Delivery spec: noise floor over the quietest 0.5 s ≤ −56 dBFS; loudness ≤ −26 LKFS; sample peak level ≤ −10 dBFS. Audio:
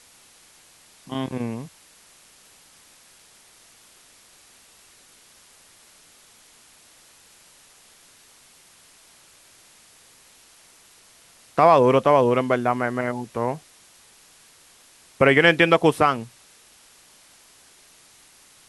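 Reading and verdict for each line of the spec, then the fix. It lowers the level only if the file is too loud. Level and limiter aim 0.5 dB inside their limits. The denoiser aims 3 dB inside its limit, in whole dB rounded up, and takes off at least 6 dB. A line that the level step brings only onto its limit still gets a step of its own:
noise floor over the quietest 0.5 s −53 dBFS: out of spec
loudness −20.0 LKFS: out of spec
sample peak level −3.5 dBFS: out of spec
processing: level −6.5 dB
brickwall limiter −10.5 dBFS

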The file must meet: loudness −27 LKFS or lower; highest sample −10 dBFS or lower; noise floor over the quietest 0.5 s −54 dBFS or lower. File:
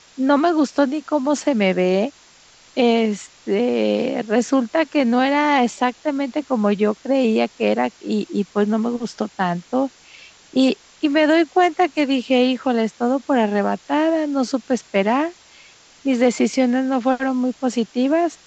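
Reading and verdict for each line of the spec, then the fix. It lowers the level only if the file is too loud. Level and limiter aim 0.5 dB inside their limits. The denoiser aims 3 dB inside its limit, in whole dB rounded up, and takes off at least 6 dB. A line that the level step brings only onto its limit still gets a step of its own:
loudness −19.5 LKFS: out of spec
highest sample −5.5 dBFS: out of spec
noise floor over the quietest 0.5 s −50 dBFS: out of spec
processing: level −8 dB

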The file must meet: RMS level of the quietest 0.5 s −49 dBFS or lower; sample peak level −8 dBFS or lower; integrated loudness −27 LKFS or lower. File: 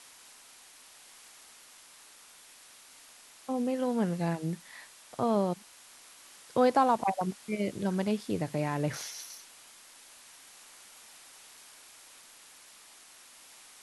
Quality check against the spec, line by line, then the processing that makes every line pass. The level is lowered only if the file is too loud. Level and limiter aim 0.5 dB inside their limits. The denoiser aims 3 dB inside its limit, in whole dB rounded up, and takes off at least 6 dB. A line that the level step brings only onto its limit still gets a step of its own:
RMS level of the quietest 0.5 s −55 dBFS: in spec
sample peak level −13.0 dBFS: in spec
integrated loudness −31.0 LKFS: in spec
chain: no processing needed

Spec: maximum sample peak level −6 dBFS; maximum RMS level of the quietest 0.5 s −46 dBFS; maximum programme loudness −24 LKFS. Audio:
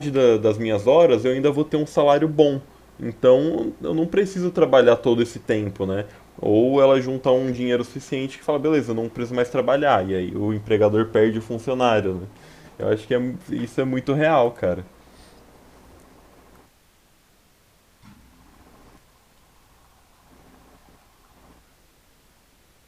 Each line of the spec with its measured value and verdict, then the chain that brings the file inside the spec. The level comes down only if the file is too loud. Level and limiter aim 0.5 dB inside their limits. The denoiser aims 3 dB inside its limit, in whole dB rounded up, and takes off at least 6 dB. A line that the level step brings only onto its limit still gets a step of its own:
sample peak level −2.0 dBFS: out of spec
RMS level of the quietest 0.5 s −58 dBFS: in spec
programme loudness −20.5 LKFS: out of spec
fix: level −4 dB
brickwall limiter −6.5 dBFS

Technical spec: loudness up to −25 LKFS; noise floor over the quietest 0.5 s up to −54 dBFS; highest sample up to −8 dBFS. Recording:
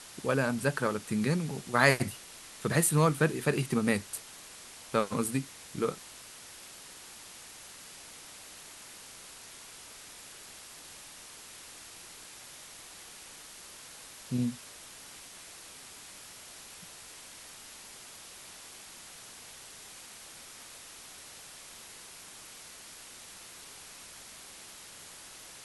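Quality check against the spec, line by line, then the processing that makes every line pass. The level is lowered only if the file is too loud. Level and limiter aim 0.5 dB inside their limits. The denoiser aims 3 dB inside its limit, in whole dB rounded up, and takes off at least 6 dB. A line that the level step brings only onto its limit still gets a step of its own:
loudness −30.0 LKFS: in spec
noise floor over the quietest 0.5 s −49 dBFS: out of spec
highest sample −7.0 dBFS: out of spec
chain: broadband denoise 8 dB, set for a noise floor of −49 dBFS
brickwall limiter −8.5 dBFS

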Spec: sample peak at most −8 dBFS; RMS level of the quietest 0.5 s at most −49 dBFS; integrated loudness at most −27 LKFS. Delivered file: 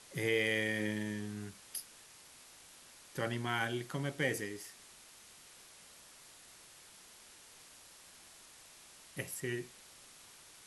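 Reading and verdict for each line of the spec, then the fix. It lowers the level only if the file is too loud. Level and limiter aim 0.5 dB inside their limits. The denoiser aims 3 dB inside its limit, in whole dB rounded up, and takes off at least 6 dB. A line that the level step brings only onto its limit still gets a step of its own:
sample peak −19.5 dBFS: in spec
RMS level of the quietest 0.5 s −58 dBFS: in spec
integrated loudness −37.0 LKFS: in spec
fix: no processing needed

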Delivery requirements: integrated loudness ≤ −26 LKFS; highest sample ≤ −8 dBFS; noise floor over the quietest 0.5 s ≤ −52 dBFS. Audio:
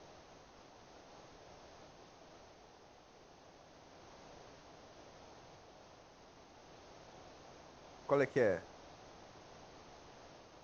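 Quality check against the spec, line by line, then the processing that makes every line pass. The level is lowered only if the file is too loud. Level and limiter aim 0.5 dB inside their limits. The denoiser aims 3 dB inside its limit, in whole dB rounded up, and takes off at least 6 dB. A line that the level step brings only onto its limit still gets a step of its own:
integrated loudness −35.5 LKFS: in spec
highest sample −18.5 dBFS: in spec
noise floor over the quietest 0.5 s −61 dBFS: in spec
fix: no processing needed

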